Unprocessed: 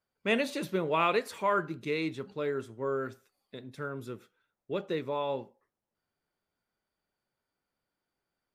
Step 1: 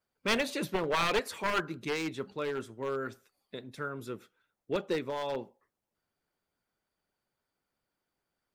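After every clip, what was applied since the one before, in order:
wavefolder on the positive side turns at −25.5 dBFS
harmonic and percussive parts rebalanced harmonic −6 dB
level +3.5 dB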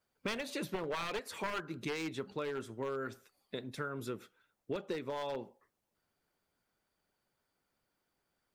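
downward compressor 10 to 1, threshold −37 dBFS, peak gain reduction 14 dB
level +2.5 dB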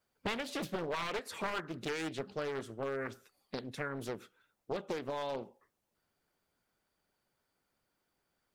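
highs frequency-modulated by the lows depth 0.94 ms
level +1 dB

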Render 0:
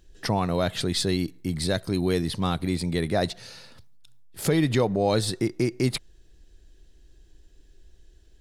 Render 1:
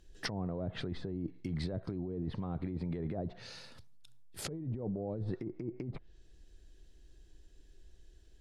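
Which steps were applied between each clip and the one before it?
treble cut that deepens with the level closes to 460 Hz, closed at −19.5 dBFS
compressor whose output falls as the input rises −29 dBFS, ratio −1
level −8 dB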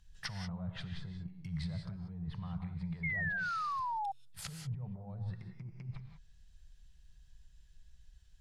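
drawn EQ curve 170 Hz 0 dB, 290 Hz −29 dB, 960 Hz −2 dB
reverb whose tail is shaped and stops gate 210 ms rising, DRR 6 dB
sound drawn into the spectrogram fall, 0:03.03–0:04.12, 770–2,200 Hz −35 dBFS
level −1 dB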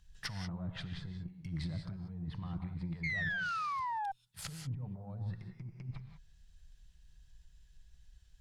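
tube saturation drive 30 dB, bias 0.5
level +2.5 dB

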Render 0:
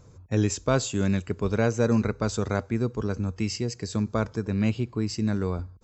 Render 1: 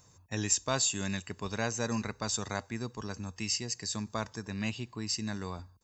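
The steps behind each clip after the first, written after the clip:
spectral tilt +3 dB per octave
comb filter 1.1 ms, depth 43%
level −5 dB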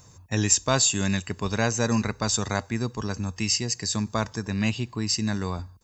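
low-shelf EQ 200 Hz +4 dB
level +7.5 dB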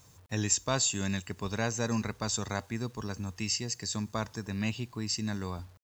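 bit reduction 9 bits
level −7 dB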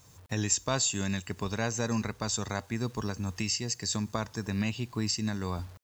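camcorder AGC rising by 18 dB per second

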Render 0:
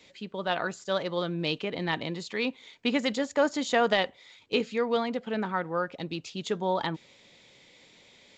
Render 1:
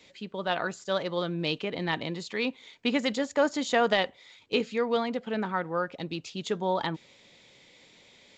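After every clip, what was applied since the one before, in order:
no processing that can be heard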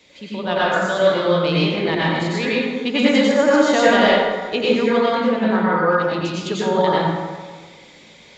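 dense smooth reverb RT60 1.5 s, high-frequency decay 0.5×, pre-delay 80 ms, DRR −8 dB
level +3 dB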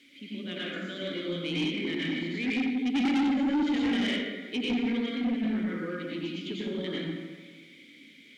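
in parallel at −6 dB: bit-depth reduction 6 bits, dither triangular
on the sum: formant filter i
soft clipping −23 dBFS, distortion −8 dB

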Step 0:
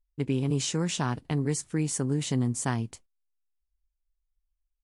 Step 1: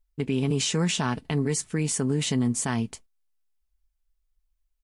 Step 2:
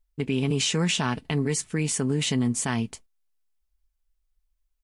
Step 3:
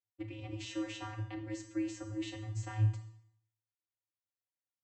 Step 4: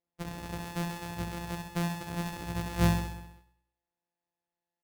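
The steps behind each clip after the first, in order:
comb filter 4.6 ms, depth 34%; dynamic equaliser 2,600 Hz, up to +4 dB, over −49 dBFS, Q 1.1; brickwall limiter −20.5 dBFS, peak gain reduction 6.5 dB; level +4 dB
dynamic equaliser 2,600 Hz, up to +4 dB, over −44 dBFS, Q 1.3
brickwall limiter −20 dBFS, peak gain reduction 5.5 dB; channel vocoder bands 32, square 107 Hz; four-comb reverb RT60 0.67 s, combs from 27 ms, DRR 6.5 dB; level −7 dB
samples sorted by size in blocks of 256 samples; repeating echo 65 ms, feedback 59%, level −5 dB; level +3 dB

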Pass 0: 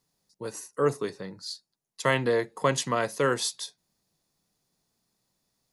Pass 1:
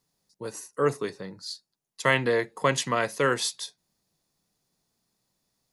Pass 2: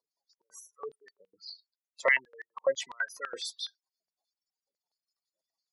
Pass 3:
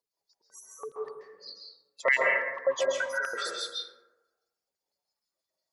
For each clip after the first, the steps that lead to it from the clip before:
dynamic equaliser 2,200 Hz, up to +5 dB, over −42 dBFS, Q 1.2
gate on every frequency bin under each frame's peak −10 dB strong; high-pass on a step sequencer 12 Hz 590–5,200 Hz; level −7.5 dB
dense smooth reverb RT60 1.1 s, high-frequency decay 0.35×, pre-delay 120 ms, DRR −3 dB

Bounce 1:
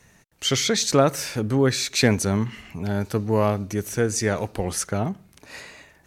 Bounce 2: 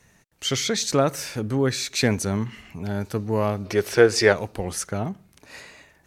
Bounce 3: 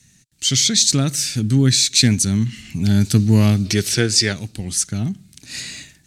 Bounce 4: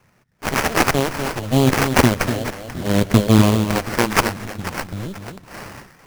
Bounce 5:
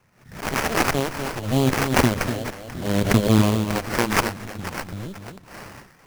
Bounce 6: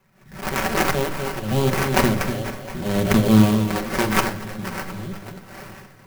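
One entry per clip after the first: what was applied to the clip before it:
gain on a spectral selection 0:03.65–0:04.32, 340–5,600 Hz +11 dB; level −2.5 dB
octave-band graphic EQ 125/250/500/1,000/4,000/8,000 Hz +7/+6/−12/−12/+8/+11 dB; automatic gain control gain up to 13.5 dB; level −1 dB
harmonic generator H 7 −13 dB, 8 −20 dB, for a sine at −1.5 dBFS; delay that swaps between a low-pass and a high-pass 244 ms, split 2,000 Hz, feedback 55%, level −7.5 dB; sample-rate reduction 3,700 Hz, jitter 20%
background raised ahead of every attack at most 110 dB per second; level −4.5 dB
echo machine with several playback heads 237 ms, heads first and third, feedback 49%, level −21 dB; on a send at −2.5 dB: convolution reverb, pre-delay 5 ms; on the sum: converter with an unsteady clock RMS 0.026 ms; level −1.5 dB

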